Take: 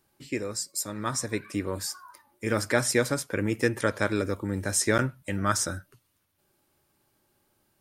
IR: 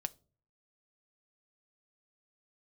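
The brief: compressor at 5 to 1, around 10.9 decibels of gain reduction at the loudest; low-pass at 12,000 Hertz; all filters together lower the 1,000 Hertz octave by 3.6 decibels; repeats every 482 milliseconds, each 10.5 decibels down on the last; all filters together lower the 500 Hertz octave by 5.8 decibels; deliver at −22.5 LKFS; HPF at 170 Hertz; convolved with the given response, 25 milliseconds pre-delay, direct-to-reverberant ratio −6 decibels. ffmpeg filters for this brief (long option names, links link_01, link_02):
-filter_complex "[0:a]highpass=170,lowpass=12000,equalizer=frequency=500:width_type=o:gain=-6,equalizer=frequency=1000:width_type=o:gain=-4,acompressor=threshold=-34dB:ratio=5,aecho=1:1:482|964|1446:0.299|0.0896|0.0269,asplit=2[link_01][link_02];[1:a]atrim=start_sample=2205,adelay=25[link_03];[link_02][link_03]afir=irnorm=-1:irlink=0,volume=7dB[link_04];[link_01][link_04]amix=inputs=2:normalize=0,volume=9dB"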